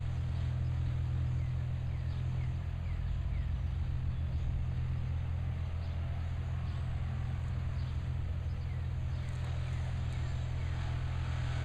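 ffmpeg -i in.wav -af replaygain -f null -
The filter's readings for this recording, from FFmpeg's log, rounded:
track_gain = +24.6 dB
track_peak = 0.036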